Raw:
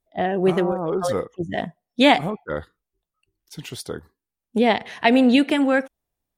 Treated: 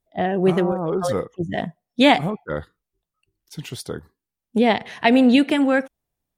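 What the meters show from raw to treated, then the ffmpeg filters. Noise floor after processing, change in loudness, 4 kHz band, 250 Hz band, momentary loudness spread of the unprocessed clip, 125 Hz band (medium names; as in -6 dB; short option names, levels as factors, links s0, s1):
under -85 dBFS, +1.0 dB, 0.0 dB, +1.5 dB, 17 LU, +3.0 dB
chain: -af "equalizer=f=140:w=1.1:g=4"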